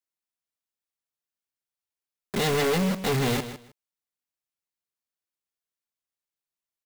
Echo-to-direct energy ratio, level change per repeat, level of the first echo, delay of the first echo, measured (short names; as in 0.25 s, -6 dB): -12.0 dB, -15.0 dB, -12.0 dB, 0.156 s